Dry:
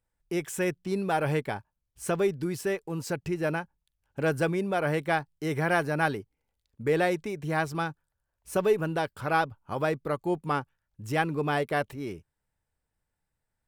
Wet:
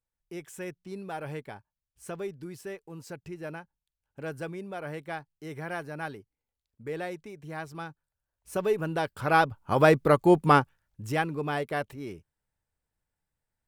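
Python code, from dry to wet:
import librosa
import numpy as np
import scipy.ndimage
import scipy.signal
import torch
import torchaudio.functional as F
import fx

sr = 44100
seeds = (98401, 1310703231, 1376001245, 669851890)

y = fx.gain(x, sr, db=fx.line((7.6, -10.0), (8.93, -1.0), (9.91, 9.0), (10.56, 9.0), (11.31, -3.0)))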